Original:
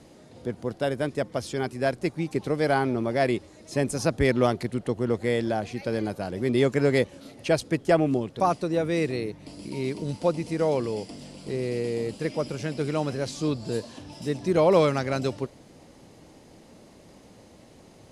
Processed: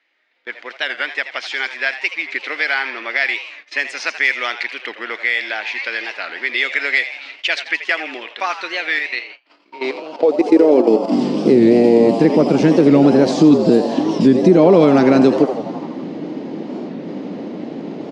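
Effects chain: low shelf 210 Hz -11.5 dB; 8.99–11.12 level quantiser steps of 16 dB; high-pass sweep 2000 Hz -> 170 Hz, 9.14–11.3; compressor 2:1, threshold -35 dBFS, peak gain reduction 11 dB; LPF 5100 Hz 12 dB/oct; bell 290 Hz +13.5 dB 1.2 oct; notch 1100 Hz, Q 30; frequency-shifting echo 82 ms, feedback 60%, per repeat +110 Hz, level -12 dB; low-pass opened by the level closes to 2800 Hz, open at -24 dBFS; gate -52 dBFS, range -21 dB; maximiser +17 dB; record warp 45 rpm, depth 160 cents; gain -1 dB

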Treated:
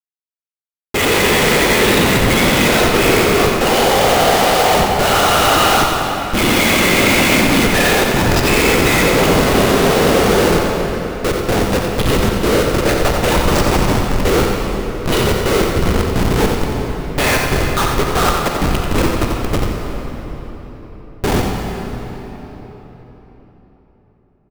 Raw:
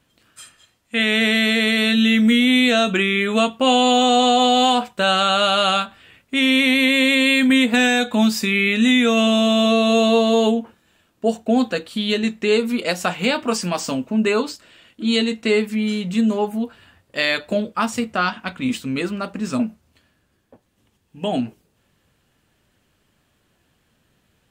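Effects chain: high shelf 4000 Hz -2.5 dB; notches 50/100/150/200/250 Hz; comb 2.4 ms, depth 74%; whisperiser; resonator 200 Hz, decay 0.18 s, harmonics all, mix 30%; Schmitt trigger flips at -22.5 dBFS; echo 89 ms -6.5 dB; on a send at -1.5 dB: reverb RT60 4.3 s, pre-delay 37 ms; on the sum: gain +7 dB

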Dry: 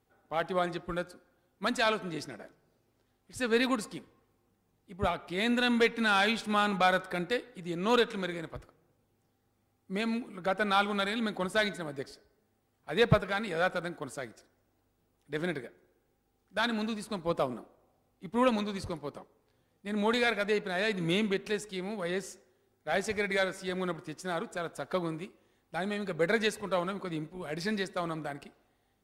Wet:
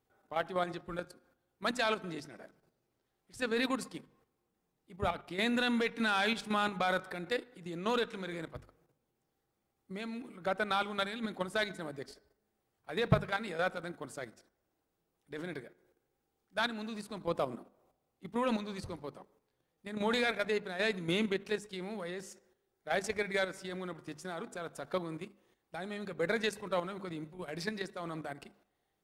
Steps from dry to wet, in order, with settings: level quantiser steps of 10 dB; notches 50/100/150/200/250 Hz

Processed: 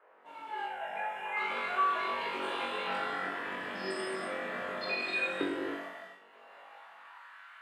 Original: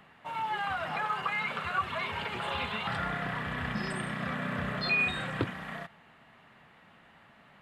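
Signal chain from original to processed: opening faded in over 1.29 s; reverb removal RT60 1.4 s; in parallel at +2 dB: compressor, threshold -48 dBFS, peak gain reduction 21 dB; on the sum: non-linear reverb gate 0.34 s flat, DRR -1 dB; band noise 410–1800 Hz -59 dBFS; 0.66–1.37 fixed phaser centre 1200 Hz, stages 6; on a send: flutter echo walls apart 3.6 m, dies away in 0.5 s; on the sum: high-pass sweep 360 Hz -> 1400 Hz, 6.16–7.42; gain -8.5 dB

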